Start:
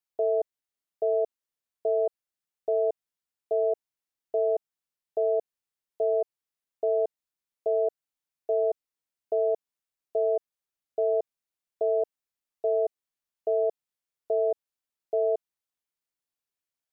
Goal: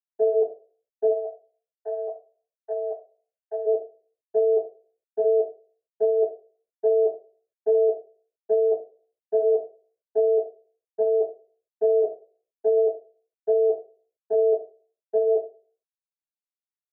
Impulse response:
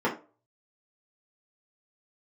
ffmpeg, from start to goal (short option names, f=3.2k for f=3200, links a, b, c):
-filter_complex "[0:a]agate=range=-33dB:threshold=-22dB:ratio=3:detection=peak,flanger=delay=2.5:depth=4.9:regen=-63:speed=0.44:shape=sinusoidal,acompressor=threshold=-37dB:ratio=2.5,asplit=3[a][b][c];[a]afade=t=out:st=1.08:d=0.02[d];[b]highpass=f=620:w=0.5412,highpass=f=620:w=1.3066,afade=t=in:st=1.08:d=0.02,afade=t=out:st=3.65:d=0.02[e];[c]afade=t=in:st=3.65:d=0.02[f];[d][e][f]amix=inputs=3:normalize=0[g];[1:a]atrim=start_sample=2205,asetrate=37926,aresample=44100[h];[g][h]afir=irnorm=-1:irlink=0"